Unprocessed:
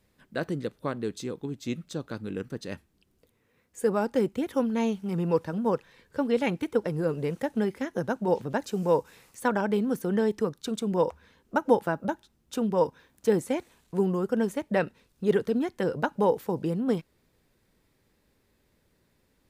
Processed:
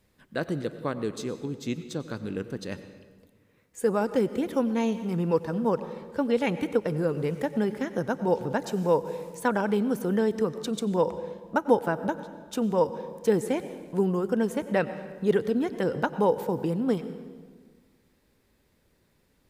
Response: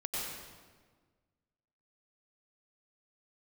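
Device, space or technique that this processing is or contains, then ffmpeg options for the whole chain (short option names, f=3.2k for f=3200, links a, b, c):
ducked reverb: -filter_complex "[0:a]asplit=3[a][b][c];[1:a]atrim=start_sample=2205[d];[b][d]afir=irnorm=-1:irlink=0[e];[c]apad=whole_len=859586[f];[e][f]sidechaincompress=threshold=-28dB:ratio=8:attack=16:release=149,volume=-13.5dB[g];[a][g]amix=inputs=2:normalize=0"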